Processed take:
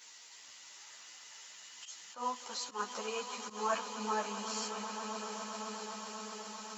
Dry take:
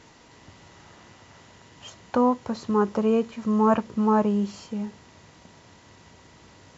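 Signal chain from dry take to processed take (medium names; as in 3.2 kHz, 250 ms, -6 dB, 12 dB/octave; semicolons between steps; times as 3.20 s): bass shelf 390 Hz -7.5 dB; echo with a slow build-up 130 ms, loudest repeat 8, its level -14 dB; slow attack 113 ms; differentiator; three-phase chorus; trim +11 dB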